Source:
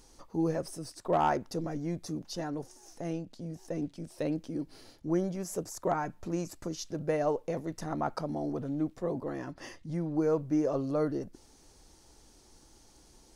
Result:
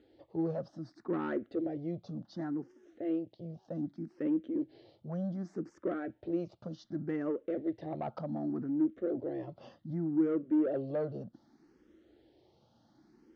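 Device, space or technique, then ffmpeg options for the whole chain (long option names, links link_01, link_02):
barber-pole phaser into a guitar amplifier: -filter_complex "[0:a]asplit=2[link_01][link_02];[link_02]afreqshift=0.66[link_03];[link_01][link_03]amix=inputs=2:normalize=1,asoftclip=type=tanh:threshold=-28dB,highpass=110,equalizer=frequency=120:width_type=q:width=4:gain=5,equalizer=frequency=220:width_type=q:width=4:gain=6,equalizer=frequency=330:width_type=q:width=4:gain=9,equalizer=frequency=580:width_type=q:width=4:gain=4,equalizer=frequency=990:width_type=q:width=4:gain=-7,equalizer=frequency=2500:width_type=q:width=4:gain=-7,lowpass=frequency=3500:width=0.5412,lowpass=frequency=3500:width=1.3066,volume=-2dB"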